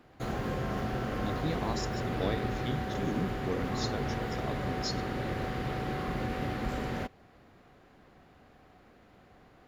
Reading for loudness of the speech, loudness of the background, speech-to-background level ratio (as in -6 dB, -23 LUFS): -38.0 LUFS, -34.5 LUFS, -3.5 dB